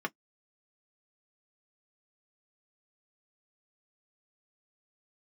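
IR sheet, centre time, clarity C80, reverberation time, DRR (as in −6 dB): 4 ms, 60.0 dB, non-exponential decay, 2.0 dB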